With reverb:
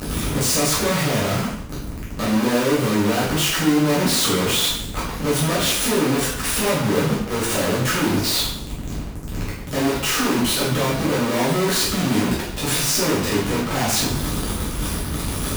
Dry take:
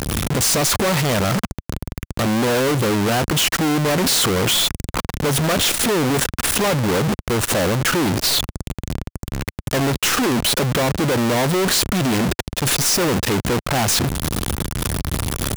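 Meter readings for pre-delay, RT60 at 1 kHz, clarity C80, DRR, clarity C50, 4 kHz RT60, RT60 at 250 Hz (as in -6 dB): 4 ms, 0.70 s, 6.0 dB, -8.0 dB, 2.5 dB, 0.65 s, 0.65 s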